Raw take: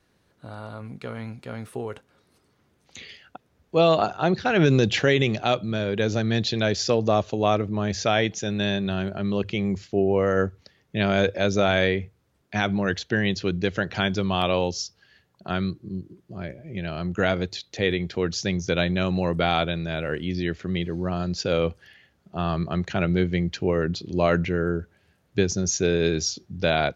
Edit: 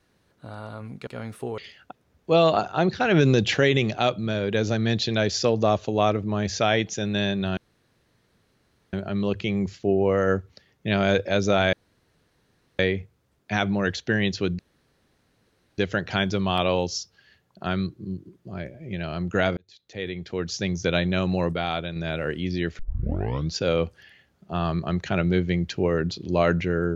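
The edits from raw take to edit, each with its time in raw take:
1.07–1.40 s: delete
1.91–3.03 s: delete
9.02 s: insert room tone 1.36 s
11.82 s: insert room tone 1.06 s
13.62 s: insert room tone 1.19 s
17.41–18.65 s: fade in
19.37–19.80 s: gain -5 dB
20.63 s: tape start 0.75 s

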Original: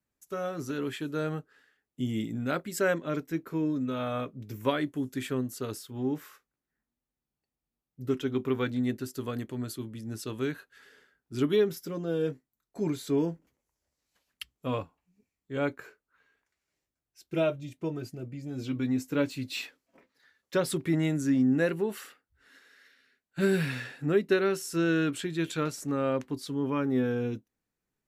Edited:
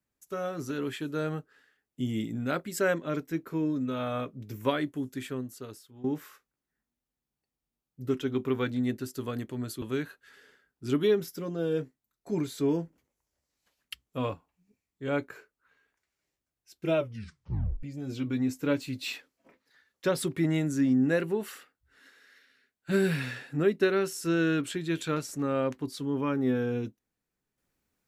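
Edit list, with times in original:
4.76–6.04 s: fade out, to -15 dB
9.82–10.31 s: delete
17.47 s: tape stop 0.85 s

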